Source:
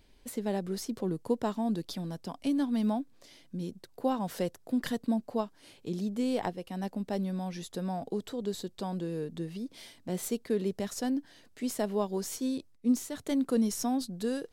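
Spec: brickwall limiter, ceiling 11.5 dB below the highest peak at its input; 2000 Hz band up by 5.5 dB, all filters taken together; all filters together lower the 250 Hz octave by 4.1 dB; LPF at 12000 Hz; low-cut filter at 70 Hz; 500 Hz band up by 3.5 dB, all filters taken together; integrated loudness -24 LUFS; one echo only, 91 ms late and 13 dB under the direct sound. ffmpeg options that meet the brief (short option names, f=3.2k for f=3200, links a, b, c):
-af "highpass=70,lowpass=12k,equalizer=f=250:t=o:g=-6,equalizer=f=500:t=o:g=5.5,equalizer=f=2k:t=o:g=6.5,alimiter=level_in=1dB:limit=-24dB:level=0:latency=1,volume=-1dB,aecho=1:1:91:0.224,volume=12dB"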